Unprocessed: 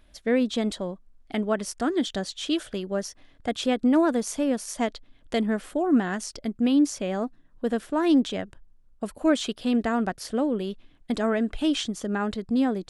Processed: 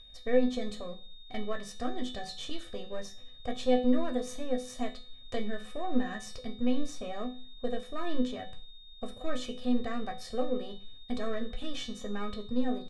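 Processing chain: half-wave gain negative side -7 dB; in parallel at +0.5 dB: compressor, threshold -36 dBFS, peak gain reduction 17.5 dB; on the sum: low shelf 360 Hz +6.5 dB; comb 1.7 ms, depth 71%; on a send at -3 dB: reverb RT60 0.30 s, pre-delay 3 ms; on the sum: whine 3700 Hz -37 dBFS; LPF 8900 Hz 12 dB/oct; resonator 250 Hz, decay 0.38 s, harmonics all, mix 80%; gain -2 dB

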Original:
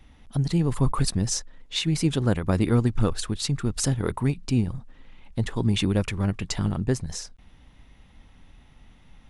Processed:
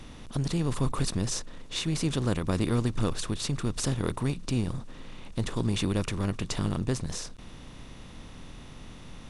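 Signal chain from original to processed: per-bin compression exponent 0.6; gain -7.5 dB

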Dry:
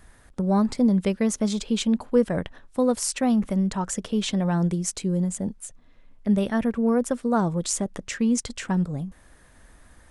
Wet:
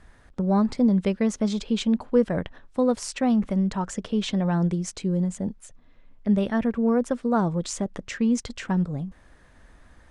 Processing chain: air absorption 78 m

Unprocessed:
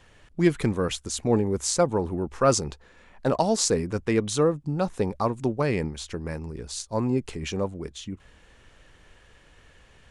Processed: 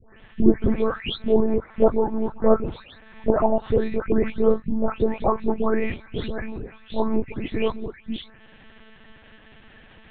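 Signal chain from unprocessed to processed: spectral delay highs late, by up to 0.45 s; treble ducked by the level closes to 710 Hz, closed at -19 dBFS; monotone LPC vocoder at 8 kHz 220 Hz; gain +6.5 dB

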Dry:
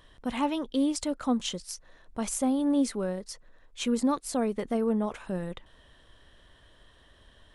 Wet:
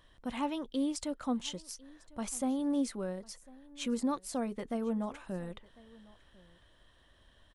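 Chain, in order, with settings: notch 430 Hz, Q 12; on a send: echo 1.05 s -23 dB; on the sum: gain -6 dB

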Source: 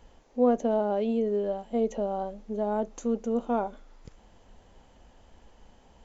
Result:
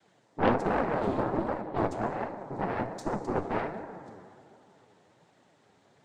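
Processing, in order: noise vocoder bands 6; 1.61–2.37 low-pass opened by the level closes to 2000 Hz, open at -23 dBFS; on a send at -6 dB: reverb RT60 2.6 s, pre-delay 18 ms; on the sum: added harmonics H 6 -13 dB, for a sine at -7.5 dBFS; flange 1.3 Hz, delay 3 ms, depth 8.6 ms, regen +45%

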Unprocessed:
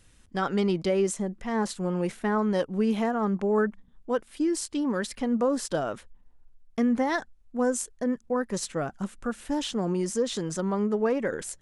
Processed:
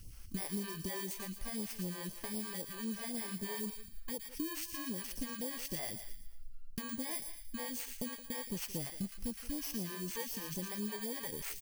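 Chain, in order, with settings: FFT order left unsorted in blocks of 32 samples; low shelf 210 Hz +5.5 dB; in parallel at 0 dB: limiter -23 dBFS, peak gain reduction 10.5 dB; on the sum: compressor 4:1, threshold -35 dBFS, peak gain reduction 15.5 dB; on a send: thin delay 0.114 s, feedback 43%, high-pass 2100 Hz, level -5.5 dB; on the sum: phaser stages 2, 3.9 Hz, lowest notch 150–1600 Hz; speakerphone echo 0.17 s, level -14 dB; gain -3 dB

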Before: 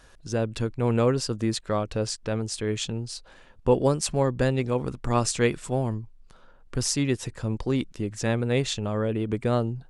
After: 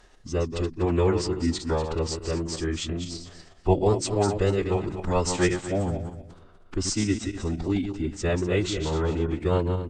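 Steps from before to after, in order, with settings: regenerating reverse delay 0.122 s, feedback 47%, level -7 dB; formant-preserving pitch shift -5 st; high shelf 8300 Hz -4 dB

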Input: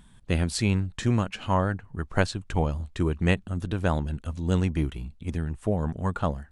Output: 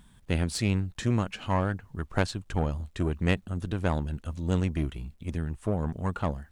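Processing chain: one diode to ground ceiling -21.5 dBFS; bit-crush 12-bit; gain -1.5 dB

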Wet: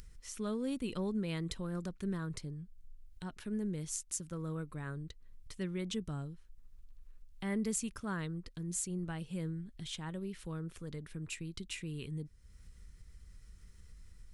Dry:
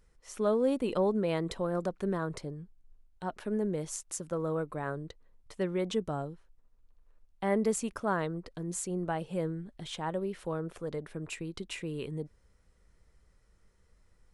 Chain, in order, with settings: passive tone stack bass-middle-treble 6-0-2; upward compressor, threshold -57 dBFS; gain +14.5 dB

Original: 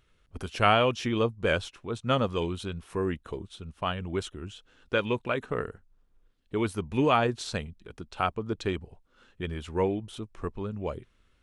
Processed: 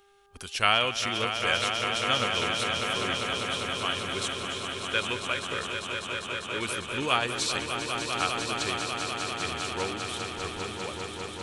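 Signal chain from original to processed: tilt shelf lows -10 dB, about 1500 Hz; buzz 400 Hz, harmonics 4, -62 dBFS; swelling echo 0.199 s, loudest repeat 5, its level -8 dB

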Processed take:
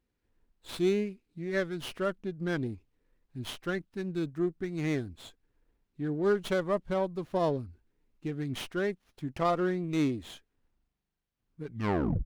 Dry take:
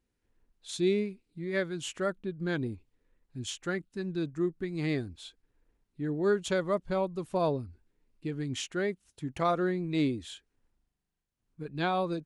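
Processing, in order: tape stop at the end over 0.61 s; running maximum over 5 samples

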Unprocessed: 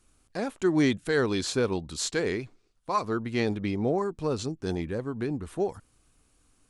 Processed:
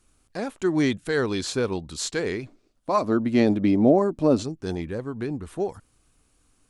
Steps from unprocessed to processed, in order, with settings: 2.42–4.42 small resonant body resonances 270/590 Hz, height 10 dB -> 14 dB, ringing for 25 ms; gain +1 dB

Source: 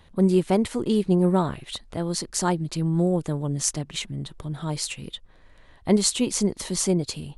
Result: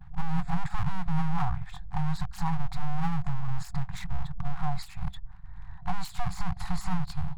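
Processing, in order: gliding pitch shift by -2.5 st ending unshifted; gate with hold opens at -46 dBFS; low shelf 430 Hz +11 dB; limiter -17.5 dBFS, peak gain reduction 15 dB; running mean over 15 samples; full-wave rectifier; FFT band-reject 190–710 Hz; gain +4 dB

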